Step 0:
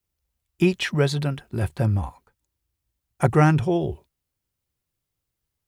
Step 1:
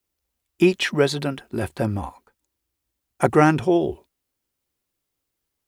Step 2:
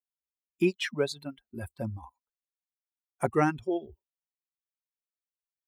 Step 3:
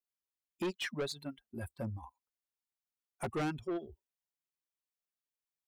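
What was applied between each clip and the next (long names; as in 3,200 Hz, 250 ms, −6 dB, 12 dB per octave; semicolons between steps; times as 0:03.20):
low shelf with overshoot 190 Hz −7.5 dB, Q 1.5; level +3 dB
spectral dynamics exaggerated over time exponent 1.5; reverb reduction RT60 1.3 s; level −7.5 dB
soft clipping −28.5 dBFS, distortion −6 dB; level −2.5 dB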